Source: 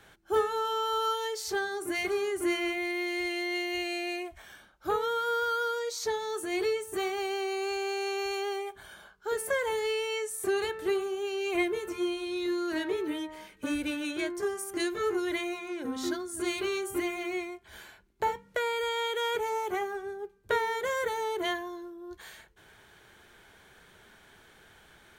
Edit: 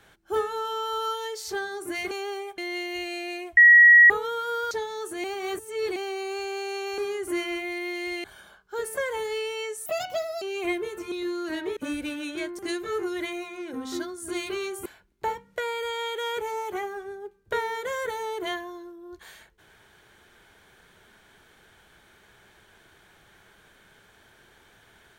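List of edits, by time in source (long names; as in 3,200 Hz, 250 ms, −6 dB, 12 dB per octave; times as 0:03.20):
0:02.11–0:03.37: swap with 0:08.30–0:08.77
0:04.36–0:04.89: beep over 1,910 Hz −9.5 dBFS
0:05.50–0:06.03: remove
0:06.56–0:07.28: reverse
0:10.39–0:11.32: play speed 167%
0:12.02–0:12.35: remove
0:13.00–0:13.58: remove
0:14.40–0:14.70: remove
0:16.97–0:17.84: remove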